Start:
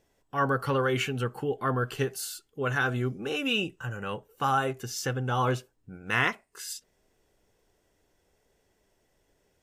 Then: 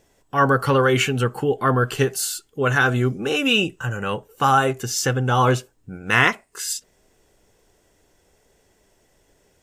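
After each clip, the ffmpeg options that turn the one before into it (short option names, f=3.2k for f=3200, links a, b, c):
-af "equalizer=f=7.5k:t=o:w=0.61:g=4,volume=9dB"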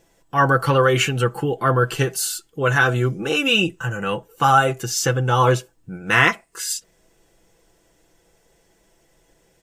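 -af "aecho=1:1:6:0.52"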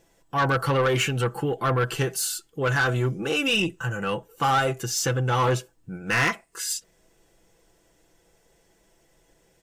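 -af "asoftclip=type=tanh:threshold=-14dB,volume=-2.5dB"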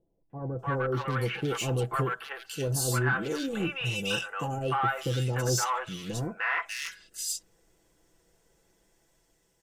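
-filter_complex "[0:a]dynaudnorm=f=160:g=11:m=5dB,acrossover=split=660|2600[a][b][c];[b]adelay=300[d];[c]adelay=590[e];[a][d][e]amix=inputs=3:normalize=0,volume=-8.5dB"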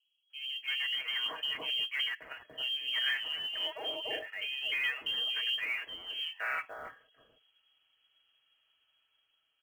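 -af "lowpass=f=2.8k:t=q:w=0.5098,lowpass=f=2.8k:t=q:w=0.6013,lowpass=f=2.8k:t=q:w=0.9,lowpass=f=2.8k:t=q:w=2.563,afreqshift=-3300,acrusher=bits=7:mode=log:mix=0:aa=0.000001,volume=-5.5dB"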